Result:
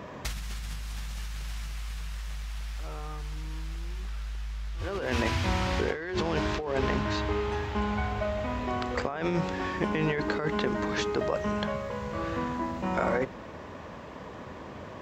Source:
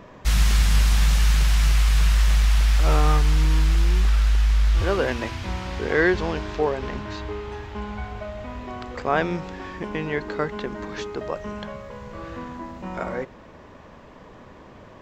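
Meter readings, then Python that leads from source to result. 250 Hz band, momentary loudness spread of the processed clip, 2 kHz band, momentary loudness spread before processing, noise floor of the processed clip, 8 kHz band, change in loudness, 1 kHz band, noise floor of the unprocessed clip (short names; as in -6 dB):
-1.5 dB, 11 LU, -5.5 dB, 15 LU, -43 dBFS, -11.0 dB, -8.5 dB, -2.5 dB, -46 dBFS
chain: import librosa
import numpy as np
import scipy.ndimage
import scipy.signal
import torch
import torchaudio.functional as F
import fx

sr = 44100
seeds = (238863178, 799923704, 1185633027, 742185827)

y = scipy.signal.sosfilt(scipy.signal.butter(4, 50.0, 'highpass', fs=sr, output='sos'), x)
y = fx.hum_notches(y, sr, base_hz=60, count=7)
y = fx.over_compress(y, sr, threshold_db=-29.0, ratio=-1.0)
y = y * librosa.db_to_amplitude(-2.0)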